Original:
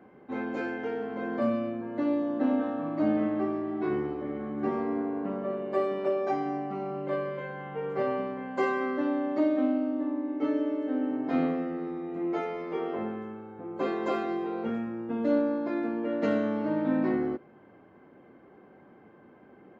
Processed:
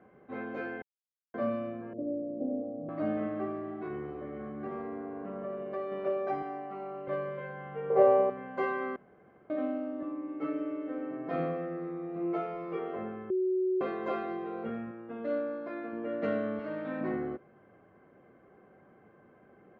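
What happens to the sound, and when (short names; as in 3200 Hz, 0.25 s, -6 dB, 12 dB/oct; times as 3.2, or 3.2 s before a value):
0.82–1.34 mute
1.93–2.89 steep low-pass 620 Hz
3.71–5.92 compressor 2.5:1, threshold -30 dBFS
6.42–7.08 Bessel high-pass 320 Hz
7.9–8.3 band shelf 620 Hz +12 dB
8.96–9.5 room tone
10.02–12.79 comb 6 ms
13.3–13.81 bleep 372 Hz -20.5 dBFS
14.91–15.93 low shelf 250 Hz -9.5 dB
16.59–17.01 tilt +2.5 dB/oct
whole clip: Bessel low-pass 2200 Hz, order 2; bell 280 Hz -7 dB 0.84 oct; notch 890 Hz, Q 5.7; gain -1.5 dB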